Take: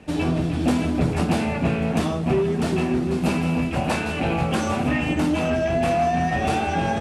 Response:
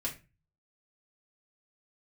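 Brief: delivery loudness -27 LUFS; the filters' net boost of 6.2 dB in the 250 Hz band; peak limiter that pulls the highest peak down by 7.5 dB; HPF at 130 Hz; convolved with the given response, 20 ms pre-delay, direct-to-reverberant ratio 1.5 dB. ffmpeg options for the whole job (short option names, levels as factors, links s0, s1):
-filter_complex "[0:a]highpass=130,equalizer=f=250:t=o:g=8,alimiter=limit=0.282:level=0:latency=1,asplit=2[s0][s1];[1:a]atrim=start_sample=2205,adelay=20[s2];[s1][s2]afir=irnorm=-1:irlink=0,volume=0.631[s3];[s0][s3]amix=inputs=2:normalize=0,volume=0.282"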